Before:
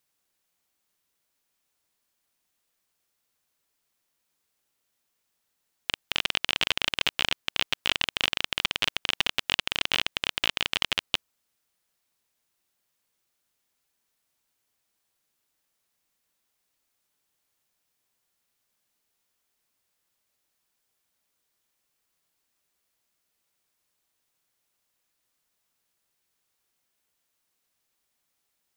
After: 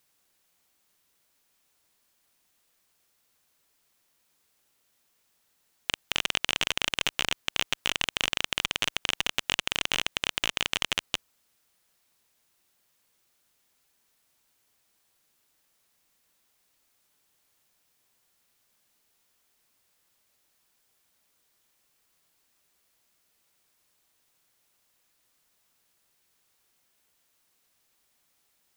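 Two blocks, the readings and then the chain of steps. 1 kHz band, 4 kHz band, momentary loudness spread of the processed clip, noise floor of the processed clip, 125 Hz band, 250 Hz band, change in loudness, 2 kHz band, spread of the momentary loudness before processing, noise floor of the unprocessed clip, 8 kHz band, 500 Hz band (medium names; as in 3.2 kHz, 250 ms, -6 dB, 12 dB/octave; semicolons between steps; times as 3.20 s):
-0.5 dB, -2.0 dB, 3 LU, -72 dBFS, 0.0 dB, 0.0 dB, -1.5 dB, -1.0 dB, 4 LU, -78 dBFS, +5.0 dB, 0.0 dB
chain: peak limiter -10 dBFS, peak gain reduction 6 dB; transformer saturation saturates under 1.4 kHz; trim +6.5 dB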